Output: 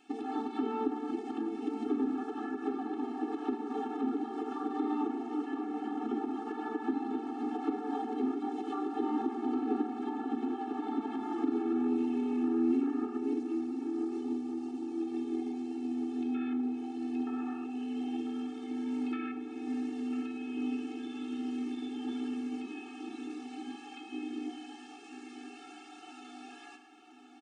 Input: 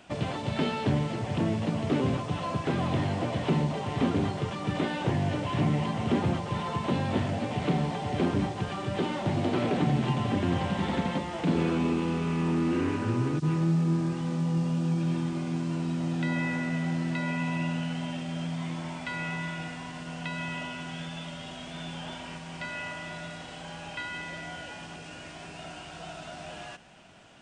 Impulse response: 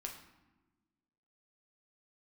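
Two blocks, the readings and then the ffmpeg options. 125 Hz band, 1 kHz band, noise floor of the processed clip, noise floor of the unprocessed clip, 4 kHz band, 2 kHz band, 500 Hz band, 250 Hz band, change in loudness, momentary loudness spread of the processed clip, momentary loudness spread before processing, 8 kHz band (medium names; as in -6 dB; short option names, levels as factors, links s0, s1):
under -30 dB, -5.0 dB, -50 dBFS, -43 dBFS, under -10 dB, -14.0 dB, -5.5 dB, -2.5 dB, -5.5 dB, 11 LU, 13 LU, under -10 dB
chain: -filter_complex "[0:a]afwtdn=0.0282,equalizer=f=89:t=o:w=2.2:g=12,bandreject=f=360:w=12,acrossover=split=360|1600[s0][s1][s2];[s0]acompressor=threshold=0.0282:ratio=4[s3];[s1]acompressor=threshold=0.00501:ratio=4[s4];[s2]acompressor=threshold=0.00126:ratio=4[s5];[s3][s4][s5]amix=inputs=3:normalize=0,alimiter=level_in=1.68:limit=0.0631:level=0:latency=1:release=80,volume=0.596,asoftclip=type=tanh:threshold=0.0398,asplit=2[s6][s7];[s7]adelay=997,lowpass=f=2000:p=1,volume=0.355,asplit=2[s8][s9];[s9]adelay=997,lowpass=f=2000:p=1,volume=0.51,asplit=2[s10][s11];[s11]adelay=997,lowpass=f=2000:p=1,volume=0.51,asplit=2[s12][s13];[s13]adelay=997,lowpass=f=2000:p=1,volume=0.51,asplit=2[s14][s15];[s15]adelay=997,lowpass=f=2000:p=1,volume=0.51,asplit=2[s16][s17];[s17]adelay=997,lowpass=f=2000:p=1,volume=0.51[s18];[s6][s8][s10][s12][s14][s16][s18]amix=inputs=7:normalize=0,asplit=2[s19][s20];[1:a]atrim=start_sample=2205[s21];[s20][s21]afir=irnorm=-1:irlink=0,volume=1.5[s22];[s19][s22]amix=inputs=2:normalize=0,afftfilt=real='re*eq(mod(floor(b*sr/1024/230),2),1)':imag='im*eq(mod(floor(b*sr/1024/230),2),1)':win_size=1024:overlap=0.75,volume=1.88"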